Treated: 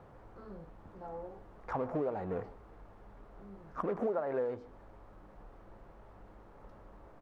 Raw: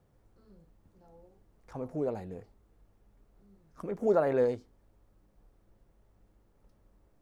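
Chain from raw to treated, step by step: companding laws mixed up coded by mu; peaking EQ 1.1 kHz +12.5 dB 2.6 oct; compression 12:1, threshold -30 dBFS, peak gain reduction 18.5 dB; low-pass 1.6 kHz 6 dB/octave; on a send: delay 154 ms -21.5 dB

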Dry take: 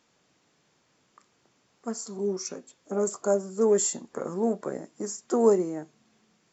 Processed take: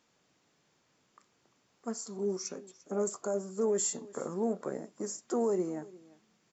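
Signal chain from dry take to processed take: peak limiter -18.5 dBFS, peak gain reduction 8.5 dB; on a send: delay 347 ms -21 dB; on the sum: trim -4 dB

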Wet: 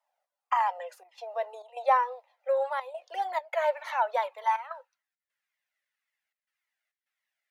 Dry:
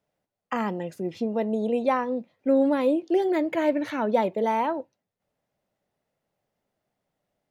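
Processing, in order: elliptic high-pass 510 Hz, stop band 50 dB; trance gate "xxxxxxx.xxx." 102 bpm -12 dB; high-pass sweep 820 Hz -> 1.9 kHz, 3.89–5.38 s; Shepard-style flanger falling 1.8 Hz; trim +2 dB

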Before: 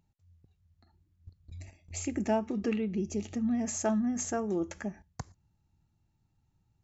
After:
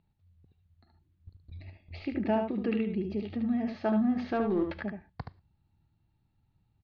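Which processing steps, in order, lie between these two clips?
4.01–4.83 s: waveshaping leveller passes 1; steep low-pass 4.5 kHz 72 dB/octave; delay 74 ms -6 dB

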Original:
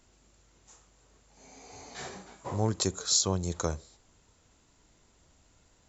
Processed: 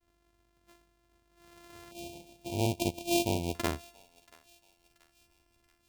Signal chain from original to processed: sorted samples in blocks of 128 samples; expander -59 dBFS; in parallel at -4 dB: crossover distortion -50.5 dBFS; 1.91–3.55 s: on the sum: brick-wall FIR band-stop 1–2.2 kHz; thinning echo 681 ms, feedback 52%, high-pass 980 Hz, level -22.5 dB; trim -5 dB

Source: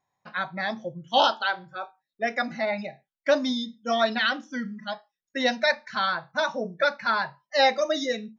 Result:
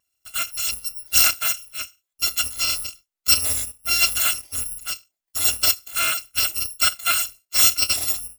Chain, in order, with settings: bit-reversed sample order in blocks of 256 samples; trim +4 dB

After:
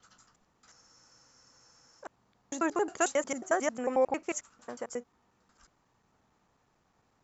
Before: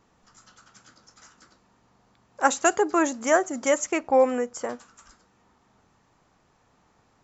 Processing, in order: slices played last to first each 90 ms, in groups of 7; spectral freeze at 0.75 s, 1.25 s; trim -7.5 dB

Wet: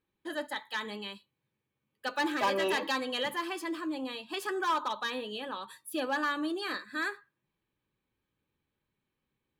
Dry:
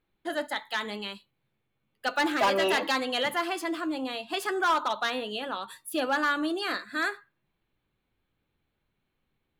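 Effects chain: comb of notches 700 Hz; trim -3.5 dB

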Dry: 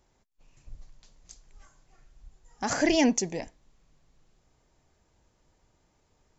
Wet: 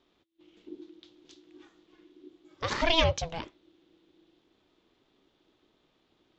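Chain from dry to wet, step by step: ring modulator 330 Hz; resonant low-pass 3.5 kHz, resonance Q 4.6

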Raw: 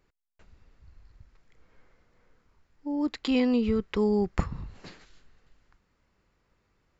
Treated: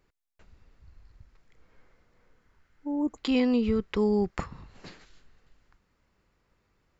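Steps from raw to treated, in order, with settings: 2.38–3.15 s: spectral replace 1.2–6 kHz before; 4.30–4.75 s: bass shelf 260 Hz -10.5 dB

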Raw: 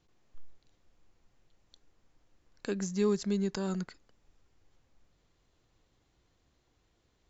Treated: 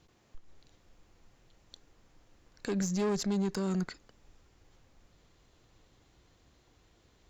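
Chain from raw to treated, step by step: valve stage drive 30 dB, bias 0.4; peak limiter -34 dBFS, peak gain reduction 6 dB; trim +9 dB

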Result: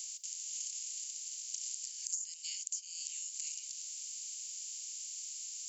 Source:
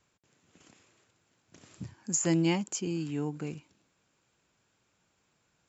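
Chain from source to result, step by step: spectral levelling over time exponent 0.6; inverse Chebyshev high-pass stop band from 960 Hz, stop band 70 dB; compression 8:1, threshold -53 dBFS, peak gain reduction 27 dB; trim +15.5 dB

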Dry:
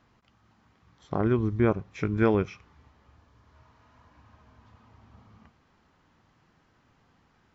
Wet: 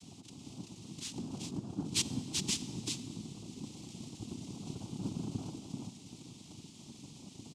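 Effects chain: comb filter that takes the minimum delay 3.8 ms; Chebyshev band-stop 230–3600 Hz, order 5; compressor with a negative ratio -49 dBFS, ratio -1; delay 385 ms -4.5 dB; noise-vocoded speech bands 4; algorithmic reverb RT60 2.1 s, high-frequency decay 0.95×, pre-delay 10 ms, DRR 14 dB; trim +12 dB

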